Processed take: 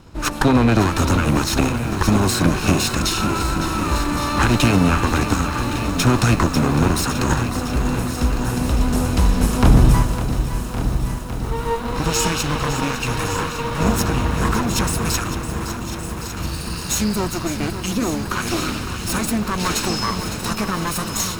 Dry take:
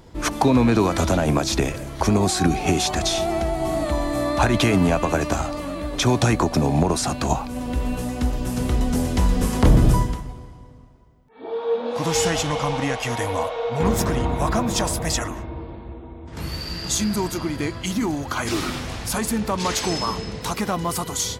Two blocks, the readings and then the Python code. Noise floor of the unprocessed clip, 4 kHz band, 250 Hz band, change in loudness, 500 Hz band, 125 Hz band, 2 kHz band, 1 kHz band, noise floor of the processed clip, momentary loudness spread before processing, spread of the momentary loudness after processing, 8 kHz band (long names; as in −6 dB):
−40 dBFS, +2.5 dB, +2.5 dB, +2.5 dB, −1.5 dB, +4.0 dB, +4.5 dB, +2.5 dB, −28 dBFS, 10 LU, 9 LU, +2.5 dB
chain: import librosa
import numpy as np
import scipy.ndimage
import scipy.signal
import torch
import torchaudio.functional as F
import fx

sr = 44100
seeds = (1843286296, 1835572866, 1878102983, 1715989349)

y = fx.lower_of_two(x, sr, delay_ms=0.74)
y = y + 10.0 ** (-12.5 / 20.0) * np.pad(y, (int(1156 * sr / 1000.0), 0))[:len(y)]
y = fx.echo_crushed(y, sr, ms=557, feedback_pct=80, bits=7, wet_db=-10.5)
y = y * librosa.db_to_amplitude(3.0)